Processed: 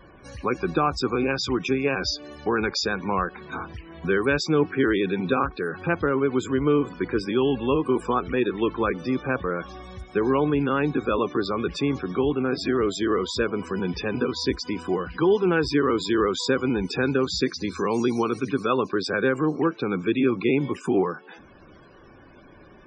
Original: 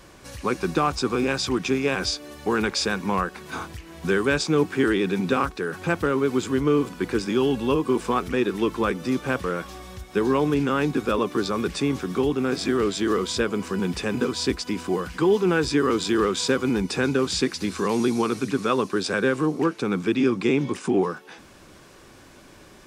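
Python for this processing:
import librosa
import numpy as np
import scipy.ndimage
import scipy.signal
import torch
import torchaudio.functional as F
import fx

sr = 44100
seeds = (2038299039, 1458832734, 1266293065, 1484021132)

y = fx.spec_topn(x, sr, count=64)
y = fx.dynamic_eq(y, sr, hz=210.0, q=4.2, threshold_db=-39.0, ratio=4.0, max_db=-4)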